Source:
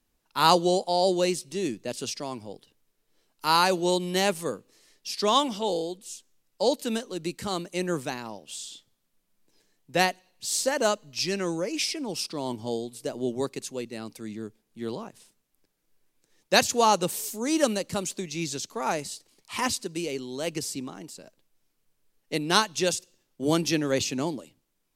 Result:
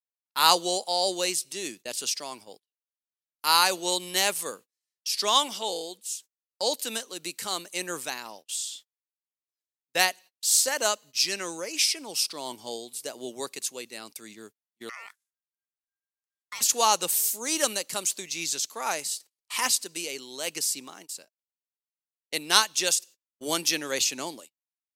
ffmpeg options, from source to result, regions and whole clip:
ffmpeg -i in.wav -filter_complex "[0:a]asettb=1/sr,asplit=3[link_01][link_02][link_03];[link_01]atrim=end=14.894[link_04];[link_02]atrim=start=14.89:end=16.61,asetpts=PTS-STARTPTS,afade=type=in:duration=0.004:curve=qsin,afade=type=out:start_time=1.716:duration=0.004:curve=qsin,acompressor=threshold=-35dB:ratio=5:attack=3.2:release=140:knee=1:detection=peak,aeval=exprs='val(0)*sin(2*PI*1600*n/s)':channel_layout=same[link_05];[link_03]atrim=start=16.606[link_06];[link_04][link_05]acrossfade=duration=0.004:curve1=hsin:curve2=qsin[link_07];[link_07][link_06]acrossfade=duration=0.004:curve1=qsin:curve2=hsin,highpass=frequency=1300:poles=1,agate=range=-35dB:threshold=-50dB:ratio=16:detection=peak,highshelf=frequency=8300:gain=9.5,volume=3dB" out.wav

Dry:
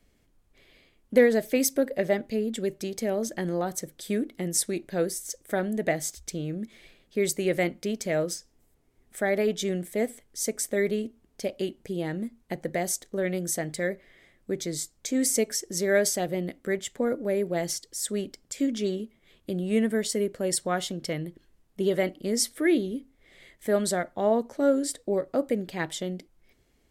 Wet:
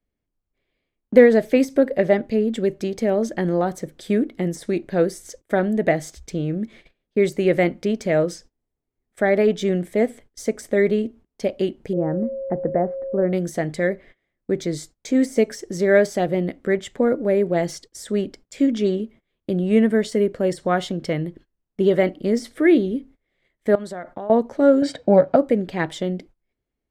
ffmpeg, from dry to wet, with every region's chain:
ffmpeg -i in.wav -filter_complex "[0:a]asettb=1/sr,asplit=3[link_01][link_02][link_03];[link_01]atrim=end=11.934[link_04];[link_02]atrim=start=11.93:end=13.33,asetpts=PTS-STARTPTS,afade=type=in:duration=0.004:curve=qsin,afade=type=out:start_time=1.396:duration=0.004:curve=qsin,lowpass=frequency=1300:width=0.5412,lowpass=frequency=1300:width=1.3066,aeval=exprs='val(0)+0.02*sin(2*PI*540*n/s)':channel_layout=same[link_05];[link_03]atrim=start=13.326[link_06];[link_04][link_05]acrossfade=duration=0.004:curve1=hsin:curve2=qsin[link_07];[link_07][link_06]acrossfade=duration=0.004:curve1=qsin:curve2=hsin,asettb=1/sr,asplit=3[link_08][link_09][link_10];[link_08]atrim=end=23.754[link_11];[link_09]atrim=start=23.75:end=24.3,asetpts=PTS-STARTPTS,afade=type=in:duration=0.004:curve=qsin,afade=type=out:start_time=0.546:duration=0.004:curve=qsin,equalizer=frequency=1000:width_type=o:width=1.5:gain=5,acompressor=threshold=-35dB:ratio=10:attack=3.2:release=140:knee=1:detection=peak[link_12];[link_10]atrim=start=24.296[link_13];[link_11][link_12]acrossfade=duration=0.004:curve1=hsin:curve2=qsin[link_14];[link_14][link_13]acrossfade=duration=0.004:curve1=qsin:curve2=hsin,asettb=1/sr,asplit=3[link_15][link_16][link_17];[link_15]atrim=end=24.824[link_18];[link_16]atrim=start=24.82:end=25.36,asetpts=PTS-STARTPTS,afade=type=in:duration=0.004:curve=qsin,afade=type=out:start_time=0.536:duration=0.004:curve=qsin,acontrast=77,highpass=110,lowpass=3900,aecho=1:1:1.3:0.62,atrim=end_sample=23814[link_19];[link_17]atrim=start=25.356[link_20];[link_18][link_19]acrossfade=duration=0.004:curve1=hsin:curve2=qsin[link_21];[link_21][link_20]acrossfade=duration=0.004:curve1=qsin:curve2=hsin,aemphasis=mode=reproduction:type=75kf,deesser=0.95,agate=range=-23dB:threshold=-51dB:ratio=16:detection=peak,volume=8dB" out.wav

